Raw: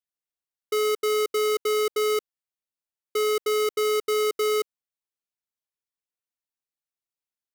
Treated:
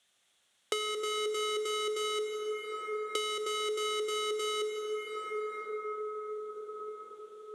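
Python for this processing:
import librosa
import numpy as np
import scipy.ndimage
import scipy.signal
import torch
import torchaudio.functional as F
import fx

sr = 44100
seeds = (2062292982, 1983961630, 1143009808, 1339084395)

y = fx.cabinet(x, sr, low_hz=130.0, low_slope=12, high_hz=9700.0, hz=(150.0, 290.0, 440.0, 980.0, 3400.0, 4900.0), db=(-7, -9, -4, -5, 9, -8))
y = fx.rev_plate(y, sr, seeds[0], rt60_s=4.4, hf_ratio=0.3, predelay_ms=0, drr_db=2.5)
y = fx.band_squash(y, sr, depth_pct=100)
y = y * librosa.db_to_amplitude(-7.0)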